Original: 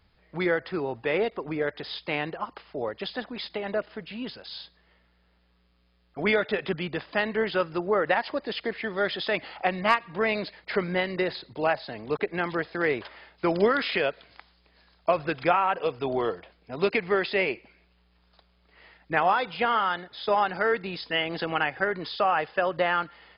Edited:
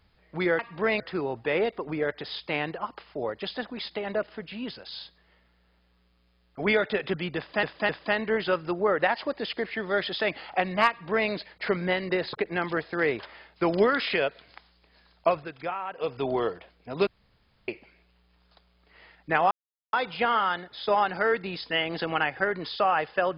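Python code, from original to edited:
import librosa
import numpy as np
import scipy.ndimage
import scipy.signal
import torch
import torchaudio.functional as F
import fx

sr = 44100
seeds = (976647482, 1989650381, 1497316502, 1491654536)

y = fx.edit(x, sr, fx.repeat(start_s=6.96, length_s=0.26, count=3),
    fx.duplicate(start_s=9.96, length_s=0.41, to_s=0.59),
    fx.cut(start_s=11.4, length_s=0.75),
    fx.fade_down_up(start_s=15.13, length_s=0.79, db=-10.0, fade_s=0.15),
    fx.room_tone_fill(start_s=16.89, length_s=0.61),
    fx.insert_silence(at_s=19.33, length_s=0.42), tone=tone)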